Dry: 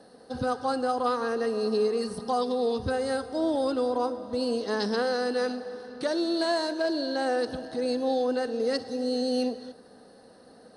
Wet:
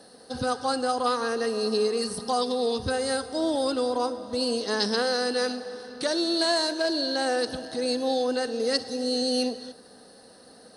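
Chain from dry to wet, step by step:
high-shelf EQ 2,600 Hz +11 dB

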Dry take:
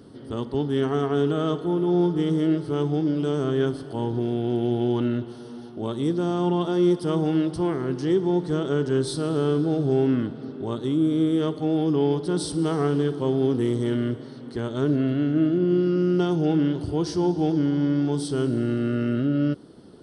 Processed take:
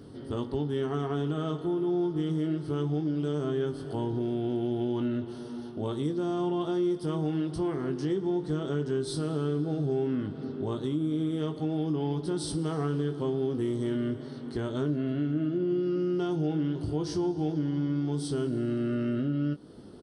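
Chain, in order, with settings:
low-shelf EQ 140 Hz +4.5 dB
double-tracking delay 20 ms −7.5 dB
downward compressor 2.5 to 1, threshold −27 dBFS, peak gain reduction 9.5 dB
level −2 dB

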